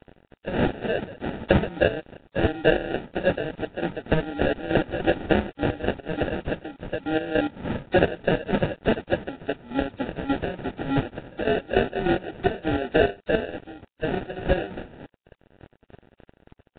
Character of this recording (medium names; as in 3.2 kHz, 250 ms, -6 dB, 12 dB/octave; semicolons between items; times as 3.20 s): a quantiser's noise floor 8-bit, dither none; chopped level 3.4 Hz, depth 65%, duty 40%; aliases and images of a low sample rate 1.1 kHz, jitter 0%; Nellymoser